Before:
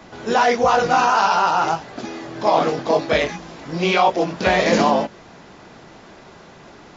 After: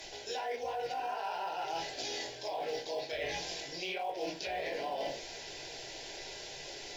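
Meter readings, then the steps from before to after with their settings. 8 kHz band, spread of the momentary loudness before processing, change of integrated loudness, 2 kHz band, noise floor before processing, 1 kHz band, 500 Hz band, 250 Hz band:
no reading, 15 LU, -20.0 dB, -18.5 dB, -44 dBFS, -20.5 dB, -18.0 dB, -24.5 dB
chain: tilt shelf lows -8 dB, about 1.2 kHz; low-pass that closes with the level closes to 1.6 kHz, closed at -13 dBFS; static phaser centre 500 Hz, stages 4; simulated room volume 170 m³, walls furnished, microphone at 1.2 m; in parallel at -10.5 dB: short-mantissa float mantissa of 2-bit; on the sum: peaking EQ 5 kHz +3 dB 0.39 oct; peak limiter -11.5 dBFS, peak gain reduction 6.5 dB; reverse; compression 6:1, threshold -33 dBFS, peak gain reduction 15.5 dB; reverse; trim -2.5 dB

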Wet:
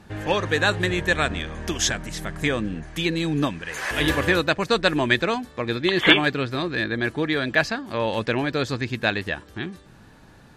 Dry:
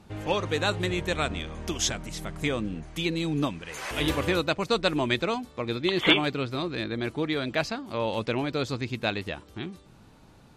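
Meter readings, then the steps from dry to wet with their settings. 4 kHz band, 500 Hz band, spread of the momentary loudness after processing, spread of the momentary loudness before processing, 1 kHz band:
+4.0 dB, +4.0 dB, 10 LU, 9 LU, +4.5 dB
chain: peaking EQ 1.7 kHz +12 dB 0.23 oct; trim +4 dB

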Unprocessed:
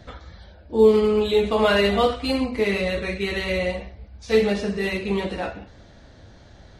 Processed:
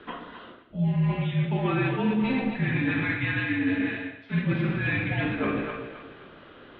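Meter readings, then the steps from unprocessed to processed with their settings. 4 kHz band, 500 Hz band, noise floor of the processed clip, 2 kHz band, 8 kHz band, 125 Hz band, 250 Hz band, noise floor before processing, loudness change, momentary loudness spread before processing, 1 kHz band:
-11.5 dB, -14.5 dB, -50 dBFS, -0.5 dB, under -35 dB, +7.0 dB, -0.5 dB, -48 dBFS, -5.0 dB, 11 LU, -6.5 dB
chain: bass shelf 380 Hz -8.5 dB; on a send: echo whose repeats swap between lows and highs 130 ms, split 850 Hz, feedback 59%, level -5 dB; on the sum: Schroeder reverb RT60 0.86 s, combs from 29 ms, DRR 7 dB; mistuned SSB -270 Hz 390–3300 Hz; dynamic bell 210 Hz, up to +7 dB, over -36 dBFS, Q 1; reverse; compression 6:1, threshold -30 dBFS, peak gain reduction 17.5 dB; reverse; trim +6.5 dB

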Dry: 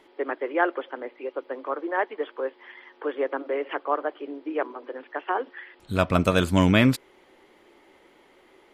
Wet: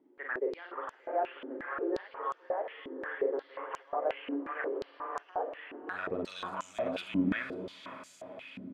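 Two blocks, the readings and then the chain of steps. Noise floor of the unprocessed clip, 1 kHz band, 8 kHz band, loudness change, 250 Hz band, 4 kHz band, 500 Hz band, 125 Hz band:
-58 dBFS, -7.5 dB, under -10 dB, -10.0 dB, -10.5 dB, -12.0 dB, -7.5 dB, -20.0 dB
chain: multi-tap echo 42/53/328/584 ms -3/-6.5/-20/-6 dB; peak limiter -15 dBFS, peak gain reduction 11 dB; echo that smears into a reverb 552 ms, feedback 51%, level -5 dB; step-sequenced band-pass 5.6 Hz 260–6900 Hz

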